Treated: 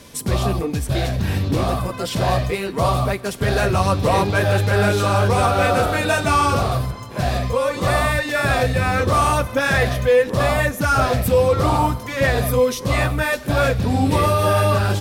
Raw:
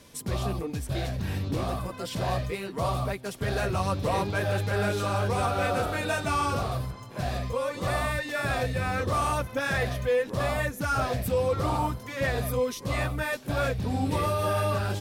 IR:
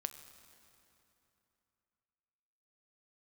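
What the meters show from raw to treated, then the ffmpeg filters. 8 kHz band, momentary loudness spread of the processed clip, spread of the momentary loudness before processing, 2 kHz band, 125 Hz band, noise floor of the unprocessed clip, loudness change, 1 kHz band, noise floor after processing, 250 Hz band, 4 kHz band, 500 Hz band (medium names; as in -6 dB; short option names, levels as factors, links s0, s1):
+9.5 dB, 6 LU, 5 LU, +9.5 dB, +9.5 dB, -42 dBFS, +9.5 dB, +9.5 dB, -32 dBFS, +9.5 dB, +9.5 dB, +10.0 dB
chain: -filter_complex "[0:a]asplit=2[s0][s1];[1:a]atrim=start_sample=2205,afade=t=out:st=0.27:d=0.01,atrim=end_sample=12348[s2];[s1][s2]afir=irnorm=-1:irlink=0,volume=1.12[s3];[s0][s3]amix=inputs=2:normalize=0,volume=1.58"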